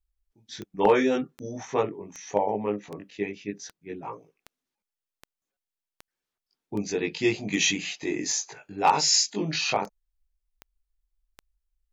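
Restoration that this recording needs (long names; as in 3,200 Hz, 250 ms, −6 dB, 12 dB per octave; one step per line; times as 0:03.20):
clipped peaks rebuilt −10 dBFS
click removal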